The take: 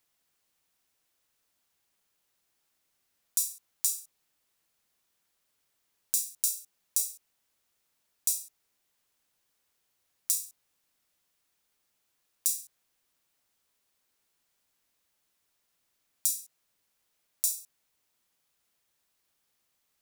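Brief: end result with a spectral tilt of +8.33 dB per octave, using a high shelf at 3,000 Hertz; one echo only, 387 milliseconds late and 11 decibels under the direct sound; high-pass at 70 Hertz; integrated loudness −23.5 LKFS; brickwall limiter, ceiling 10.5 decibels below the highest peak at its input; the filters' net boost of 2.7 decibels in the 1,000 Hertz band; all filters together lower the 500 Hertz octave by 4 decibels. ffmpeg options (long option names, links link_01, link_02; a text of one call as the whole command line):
ffmpeg -i in.wav -af "highpass=70,equalizer=frequency=500:width_type=o:gain=-7,equalizer=frequency=1000:width_type=o:gain=4.5,highshelf=frequency=3000:gain=5,alimiter=limit=-8.5dB:level=0:latency=1,aecho=1:1:387:0.282,volume=7.5dB" out.wav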